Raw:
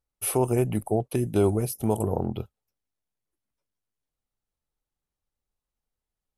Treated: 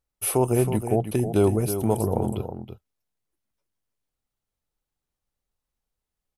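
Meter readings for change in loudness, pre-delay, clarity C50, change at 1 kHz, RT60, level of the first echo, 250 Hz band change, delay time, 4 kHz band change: +2.0 dB, no reverb audible, no reverb audible, +2.5 dB, no reverb audible, −9.5 dB, +2.5 dB, 321 ms, +2.5 dB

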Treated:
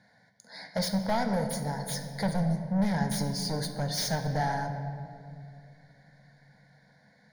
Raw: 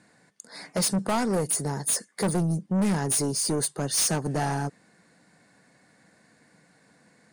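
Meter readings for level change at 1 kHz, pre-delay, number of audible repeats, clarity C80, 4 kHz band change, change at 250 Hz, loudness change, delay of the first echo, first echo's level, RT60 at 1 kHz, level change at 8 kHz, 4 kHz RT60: −0.5 dB, 5 ms, no echo audible, 8.0 dB, −2.5 dB, −2.5 dB, −4.5 dB, no echo audible, no echo audible, 2.0 s, −13.0 dB, 1.3 s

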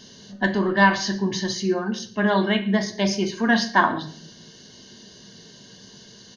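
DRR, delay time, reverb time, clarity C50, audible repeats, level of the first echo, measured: 7.0 dB, 115 ms, 0.60 s, 13.0 dB, 1, −21.0 dB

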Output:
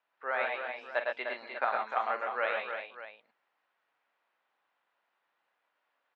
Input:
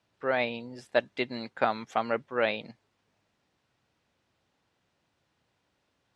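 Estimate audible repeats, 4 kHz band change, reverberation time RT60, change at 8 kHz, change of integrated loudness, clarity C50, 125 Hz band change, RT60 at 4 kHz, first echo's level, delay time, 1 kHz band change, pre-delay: 5, −7.5 dB, no reverb audible, can't be measured, −3.0 dB, no reverb audible, below −25 dB, no reverb audible, −10.5 dB, 45 ms, −0.5 dB, no reverb audible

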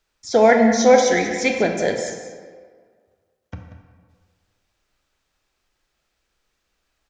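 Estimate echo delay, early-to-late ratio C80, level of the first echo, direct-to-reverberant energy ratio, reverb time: 186 ms, 5.5 dB, −12.5 dB, 3.0 dB, 1.8 s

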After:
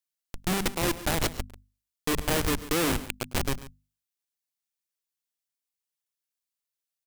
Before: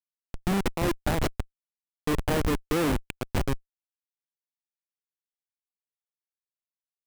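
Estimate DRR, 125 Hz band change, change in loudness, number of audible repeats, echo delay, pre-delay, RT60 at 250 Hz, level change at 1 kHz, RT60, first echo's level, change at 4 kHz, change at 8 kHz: no reverb audible, −3.0 dB, +0.5 dB, 2, 102 ms, no reverb audible, no reverb audible, 0.0 dB, no reverb audible, −20.0 dB, +5.5 dB, +7.5 dB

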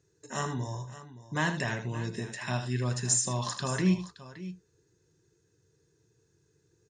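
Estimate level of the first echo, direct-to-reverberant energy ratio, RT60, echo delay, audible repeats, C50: −10.5 dB, no reverb audible, no reverb audible, 79 ms, 2, no reverb audible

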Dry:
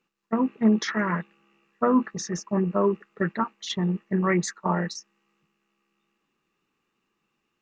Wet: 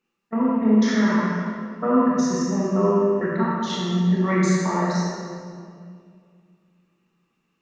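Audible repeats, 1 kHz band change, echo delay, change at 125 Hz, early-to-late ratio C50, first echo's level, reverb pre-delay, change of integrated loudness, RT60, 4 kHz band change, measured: no echo audible, +3.5 dB, no echo audible, +5.5 dB, −3.5 dB, no echo audible, 23 ms, +4.5 dB, 2.2 s, +2.5 dB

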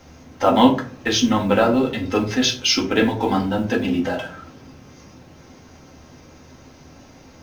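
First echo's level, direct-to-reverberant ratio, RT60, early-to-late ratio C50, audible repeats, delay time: no echo audible, −1.0 dB, 0.45 s, 10.5 dB, no echo audible, no echo audible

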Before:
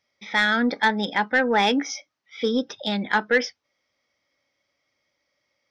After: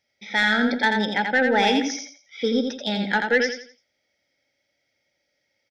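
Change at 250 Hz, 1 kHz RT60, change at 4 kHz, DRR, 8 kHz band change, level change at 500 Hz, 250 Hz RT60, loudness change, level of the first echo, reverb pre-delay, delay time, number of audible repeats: +1.5 dB, no reverb audible, +1.0 dB, no reverb audible, can't be measured, +1.5 dB, no reverb audible, +0.5 dB, −5.0 dB, no reverb audible, 85 ms, 3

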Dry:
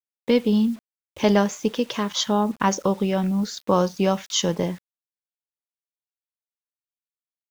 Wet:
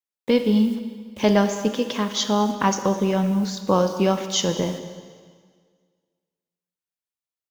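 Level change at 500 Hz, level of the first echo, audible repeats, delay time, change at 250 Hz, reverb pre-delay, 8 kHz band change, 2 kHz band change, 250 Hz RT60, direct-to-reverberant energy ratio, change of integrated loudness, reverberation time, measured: +1.0 dB, −18.5 dB, 1, 210 ms, +1.0 dB, 5 ms, can't be measured, +0.5 dB, 1.8 s, 7.5 dB, +1.0 dB, 1.8 s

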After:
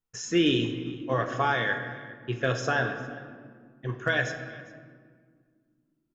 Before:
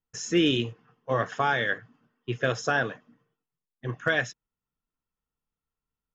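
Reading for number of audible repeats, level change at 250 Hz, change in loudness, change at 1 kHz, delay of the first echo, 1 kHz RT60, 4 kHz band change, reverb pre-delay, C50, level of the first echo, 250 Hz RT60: 1, +0.5 dB, −0.5 dB, 0.0 dB, 402 ms, 1.7 s, −0.5 dB, 3 ms, 7.5 dB, −21.0 dB, 3.4 s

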